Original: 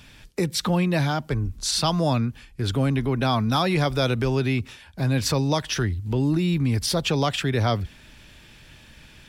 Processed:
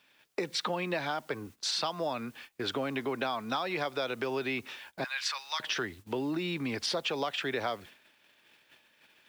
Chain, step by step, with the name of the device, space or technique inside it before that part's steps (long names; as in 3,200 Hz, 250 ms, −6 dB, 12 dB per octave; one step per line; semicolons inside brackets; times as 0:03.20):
0:05.04–0:05.60: high-pass filter 1,200 Hz 24 dB per octave
baby monitor (band-pass filter 420–4,000 Hz; downward compressor 10 to 1, threshold −30 dBFS, peak gain reduction 11.5 dB; white noise bed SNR 28 dB; noise gate −50 dBFS, range −15 dB)
level +1.5 dB